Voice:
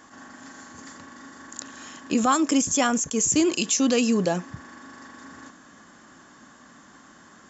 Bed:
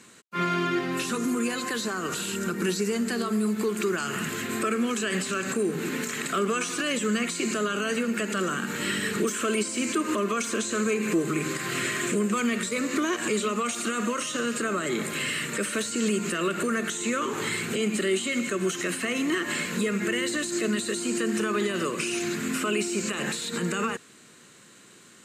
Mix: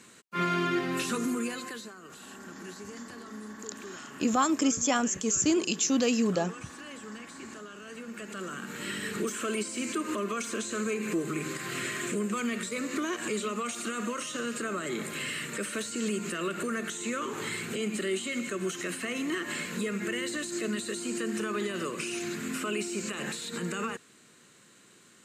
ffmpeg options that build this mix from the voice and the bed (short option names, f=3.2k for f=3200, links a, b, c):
-filter_complex "[0:a]adelay=2100,volume=-4.5dB[a];[1:a]volume=10.5dB,afade=t=out:st=1.15:d=0.8:silence=0.158489,afade=t=in:st=7.84:d=1.43:silence=0.237137[b];[a][b]amix=inputs=2:normalize=0"